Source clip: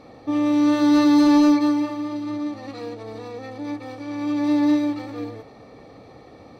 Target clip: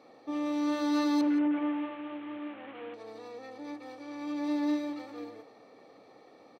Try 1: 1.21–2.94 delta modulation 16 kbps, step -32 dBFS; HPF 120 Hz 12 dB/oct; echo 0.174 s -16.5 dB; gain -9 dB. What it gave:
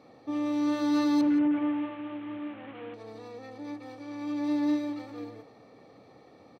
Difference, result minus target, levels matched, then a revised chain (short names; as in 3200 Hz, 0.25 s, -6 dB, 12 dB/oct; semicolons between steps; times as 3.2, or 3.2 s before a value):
125 Hz band +9.0 dB
1.21–2.94 delta modulation 16 kbps, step -32 dBFS; HPF 290 Hz 12 dB/oct; echo 0.174 s -16.5 dB; gain -9 dB